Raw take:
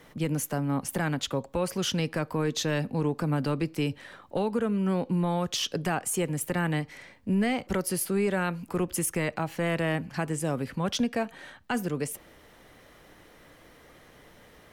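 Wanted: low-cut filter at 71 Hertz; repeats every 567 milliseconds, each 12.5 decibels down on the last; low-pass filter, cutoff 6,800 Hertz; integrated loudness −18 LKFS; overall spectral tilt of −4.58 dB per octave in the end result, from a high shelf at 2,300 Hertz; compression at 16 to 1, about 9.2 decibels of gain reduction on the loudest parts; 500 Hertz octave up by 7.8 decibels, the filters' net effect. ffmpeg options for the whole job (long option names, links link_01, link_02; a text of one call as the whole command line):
ffmpeg -i in.wav -af "highpass=71,lowpass=6800,equalizer=frequency=500:width_type=o:gain=9,highshelf=frequency=2300:gain=5.5,acompressor=threshold=-26dB:ratio=16,aecho=1:1:567|1134|1701:0.237|0.0569|0.0137,volume=13.5dB" out.wav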